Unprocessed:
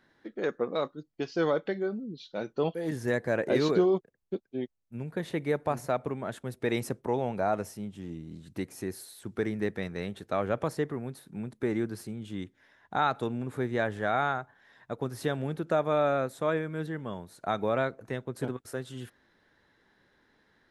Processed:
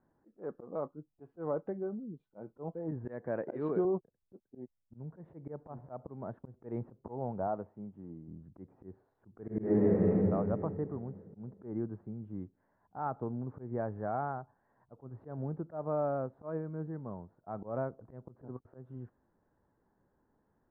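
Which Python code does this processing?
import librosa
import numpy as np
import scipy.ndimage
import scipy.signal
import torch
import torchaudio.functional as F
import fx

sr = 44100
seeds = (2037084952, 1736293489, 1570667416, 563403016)

y = fx.weighting(x, sr, curve='D', at=(3.05, 3.85))
y = fx.highpass(y, sr, hz=190.0, slope=6, at=(7.47, 8.28))
y = fx.reverb_throw(y, sr, start_s=9.42, length_s=0.75, rt60_s=2.5, drr_db=-11.5)
y = scipy.signal.sosfilt(scipy.signal.butter(4, 1000.0, 'lowpass', fs=sr, output='sos'), y)
y = fx.peak_eq(y, sr, hz=450.0, db=-5.0, octaves=2.3)
y = fx.auto_swell(y, sr, attack_ms=145.0)
y = y * 10.0 ** (-1.5 / 20.0)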